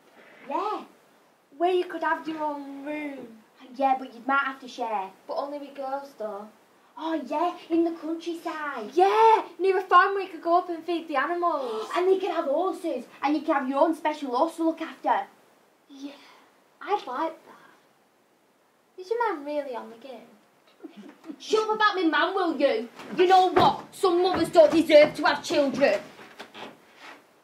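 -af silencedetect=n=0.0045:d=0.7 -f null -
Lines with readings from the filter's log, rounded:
silence_start: 17.73
silence_end: 18.98 | silence_duration: 1.25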